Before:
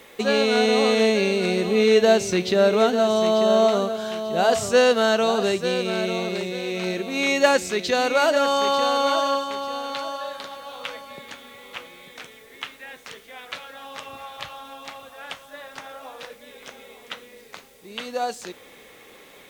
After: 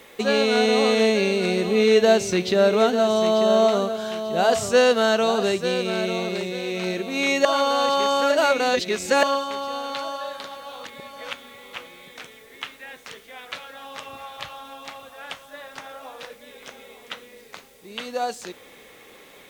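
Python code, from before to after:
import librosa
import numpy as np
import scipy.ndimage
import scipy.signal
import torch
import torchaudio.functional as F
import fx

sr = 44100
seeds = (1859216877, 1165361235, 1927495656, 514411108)

y = fx.edit(x, sr, fx.reverse_span(start_s=7.45, length_s=1.78),
    fx.reverse_span(start_s=10.85, length_s=0.48), tone=tone)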